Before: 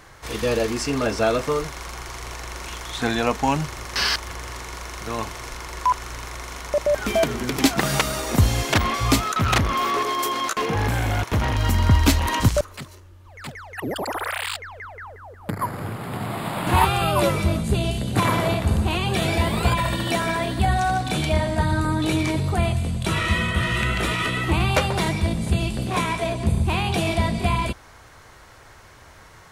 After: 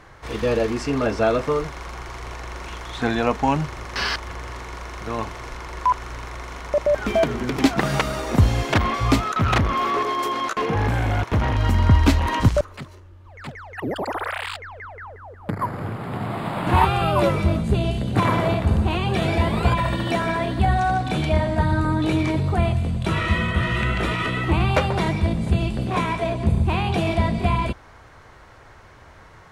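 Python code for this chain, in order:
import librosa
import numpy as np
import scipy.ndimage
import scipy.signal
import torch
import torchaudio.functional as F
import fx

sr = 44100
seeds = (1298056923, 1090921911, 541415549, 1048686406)

y = fx.lowpass(x, sr, hz=2200.0, slope=6)
y = y * librosa.db_to_amplitude(1.5)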